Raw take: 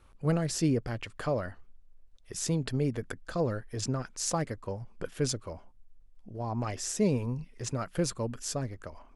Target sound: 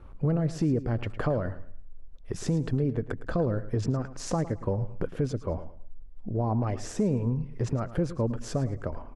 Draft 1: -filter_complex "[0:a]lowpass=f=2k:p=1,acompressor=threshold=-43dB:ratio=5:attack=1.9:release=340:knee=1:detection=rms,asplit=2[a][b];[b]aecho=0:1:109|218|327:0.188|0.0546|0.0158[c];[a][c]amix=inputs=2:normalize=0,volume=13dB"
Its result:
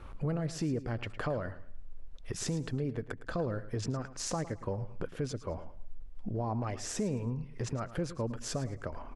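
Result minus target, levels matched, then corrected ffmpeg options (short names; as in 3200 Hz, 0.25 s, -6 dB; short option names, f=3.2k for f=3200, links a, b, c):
compressor: peak gain reduction +8 dB; 2000 Hz band +5.0 dB
-filter_complex "[0:a]lowpass=f=610:p=1,acompressor=threshold=-34dB:ratio=5:attack=1.9:release=340:knee=1:detection=rms,asplit=2[a][b];[b]aecho=0:1:109|218|327:0.188|0.0546|0.0158[c];[a][c]amix=inputs=2:normalize=0,volume=13dB"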